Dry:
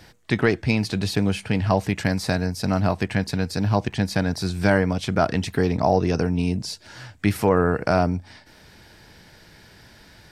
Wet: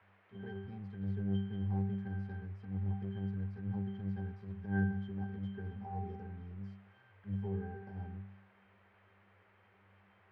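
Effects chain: octave resonator G, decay 0.6 s; transient shaper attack -12 dB, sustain +1 dB; band noise 330–2200 Hz -65 dBFS; gain -4 dB

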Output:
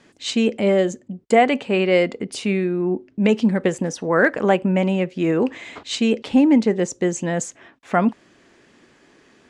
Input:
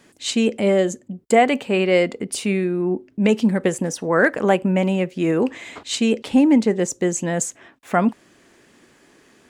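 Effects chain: LPF 6200 Hz 12 dB/oct

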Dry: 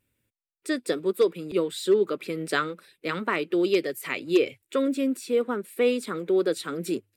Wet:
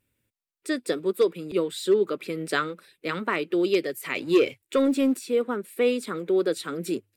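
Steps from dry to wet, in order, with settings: 4.15–5.19 sample leveller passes 1

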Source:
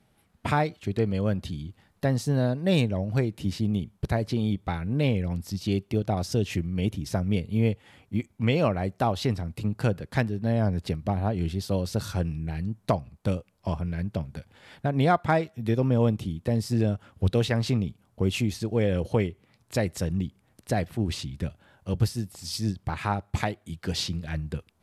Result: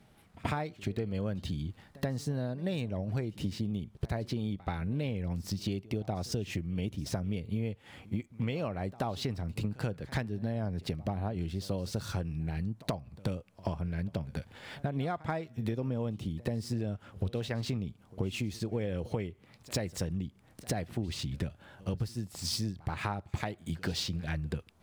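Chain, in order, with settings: median filter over 3 samples; compressor 12:1, threshold -34 dBFS, peak gain reduction 18 dB; reverse echo 81 ms -20.5 dB; gain +4 dB

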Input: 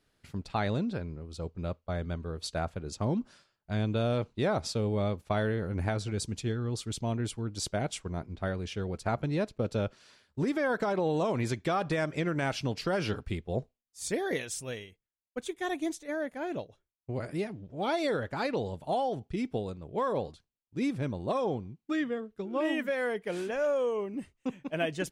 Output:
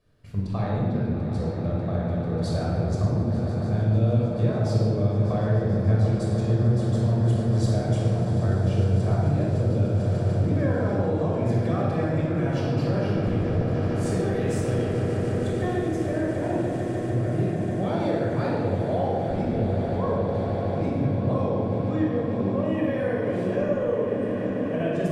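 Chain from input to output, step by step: tilt shelf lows +5.5 dB; on a send: swelling echo 0.148 s, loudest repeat 8, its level -16.5 dB; on the sum: compressor, threshold -29 dBFS, peak gain reduction 9.5 dB; shoebox room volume 2600 m³, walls mixed, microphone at 5.7 m; gain -2.5 dB

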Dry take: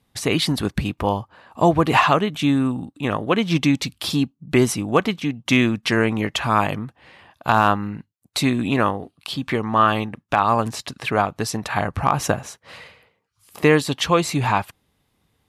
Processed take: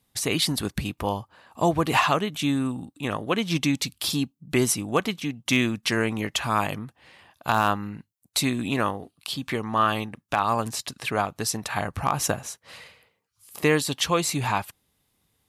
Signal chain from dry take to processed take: high shelf 4800 Hz +11.5 dB; gain -6 dB

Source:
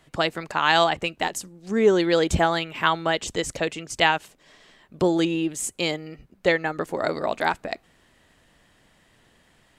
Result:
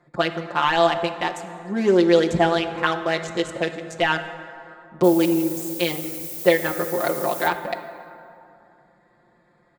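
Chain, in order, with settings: Wiener smoothing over 15 samples; HPF 190 Hz 6 dB/oct; de-esser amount 65%; LPF 11000 Hz 12 dB/oct; comb 5.7 ms, depth 99%; 5.03–7.47 added noise violet -34 dBFS; plate-style reverb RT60 2.7 s, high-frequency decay 0.5×, DRR 9 dB

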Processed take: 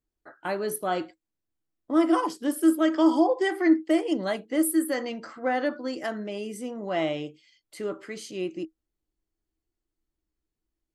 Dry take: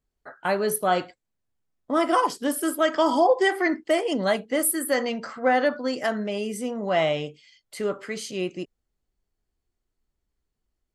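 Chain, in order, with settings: bell 320 Hz +14.5 dB 0.21 oct; gain -6 dB

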